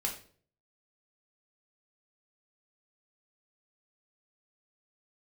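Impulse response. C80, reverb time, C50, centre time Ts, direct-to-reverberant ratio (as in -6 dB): 13.0 dB, 0.50 s, 8.0 dB, 20 ms, 0.0 dB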